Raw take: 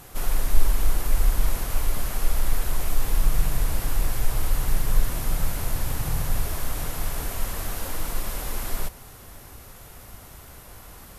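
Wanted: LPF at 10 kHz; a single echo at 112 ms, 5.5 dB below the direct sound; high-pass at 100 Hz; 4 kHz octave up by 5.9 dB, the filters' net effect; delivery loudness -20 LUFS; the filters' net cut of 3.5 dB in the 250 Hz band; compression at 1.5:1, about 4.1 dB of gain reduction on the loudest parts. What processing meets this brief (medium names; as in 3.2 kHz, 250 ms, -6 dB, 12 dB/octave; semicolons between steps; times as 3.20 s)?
high-pass 100 Hz; low-pass 10 kHz; peaking EQ 250 Hz -5 dB; peaking EQ 4 kHz +7.5 dB; compression 1.5:1, threshold -40 dBFS; delay 112 ms -5.5 dB; trim +16 dB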